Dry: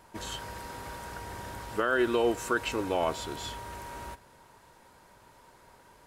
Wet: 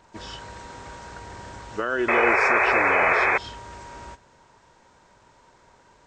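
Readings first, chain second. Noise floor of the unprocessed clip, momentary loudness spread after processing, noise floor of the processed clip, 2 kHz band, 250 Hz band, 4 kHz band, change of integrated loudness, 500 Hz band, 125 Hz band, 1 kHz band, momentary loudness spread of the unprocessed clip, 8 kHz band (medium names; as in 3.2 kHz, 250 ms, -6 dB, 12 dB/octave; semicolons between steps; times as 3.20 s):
-58 dBFS, 20 LU, -57 dBFS, +13.5 dB, +1.5 dB, 0.0 dB, +12.5 dB, +4.5 dB, +1.0 dB, +10.0 dB, 15 LU, no reading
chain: knee-point frequency compression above 2.8 kHz 1.5:1; painted sound noise, 2.08–3.38 s, 360–2600 Hz -21 dBFS; trim +1 dB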